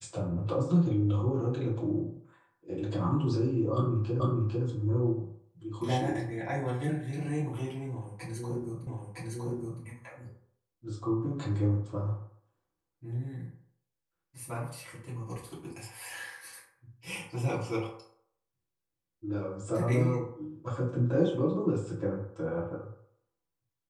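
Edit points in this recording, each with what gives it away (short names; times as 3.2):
4.2 repeat of the last 0.45 s
8.87 repeat of the last 0.96 s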